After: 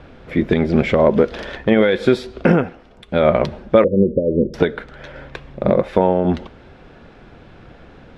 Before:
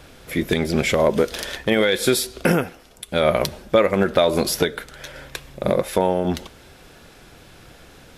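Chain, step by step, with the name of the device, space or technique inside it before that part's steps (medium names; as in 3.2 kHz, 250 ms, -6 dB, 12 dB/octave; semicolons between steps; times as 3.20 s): phone in a pocket (low-pass 3.5 kHz 12 dB/octave; peaking EQ 220 Hz +3 dB 0.39 oct; treble shelf 2.2 kHz -10 dB); 3.84–4.54 s: steep low-pass 550 Hz 96 dB/octave; trim +4.5 dB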